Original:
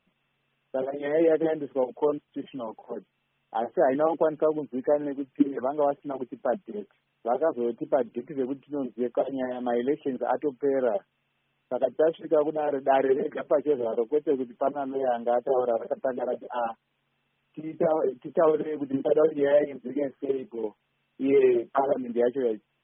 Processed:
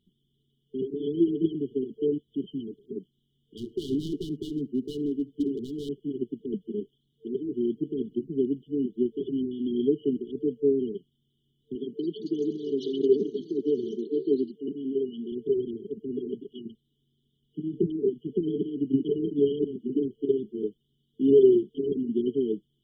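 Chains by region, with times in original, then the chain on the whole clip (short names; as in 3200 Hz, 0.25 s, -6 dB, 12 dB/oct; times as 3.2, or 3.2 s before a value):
3.57–5.89 hard clip -25.5 dBFS + echo 73 ms -23.5 dB
11.75–15.32 HPF 170 Hz + echoes that change speed 0.238 s, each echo +6 st, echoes 2, each echo -6 dB
whole clip: low shelf 240 Hz +6 dB; FFT band-reject 450–2900 Hz; gain +1.5 dB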